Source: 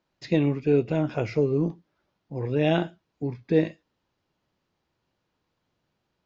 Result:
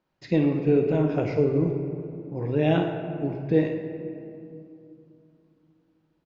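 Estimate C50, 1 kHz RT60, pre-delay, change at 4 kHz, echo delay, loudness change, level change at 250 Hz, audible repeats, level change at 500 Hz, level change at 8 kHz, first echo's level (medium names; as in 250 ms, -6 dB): 5.0 dB, 2.5 s, 4 ms, -3.0 dB, 52 ms, +0.5 dB, +2.0 dB, 1, +1.5 dB, no reading, -10.5 dB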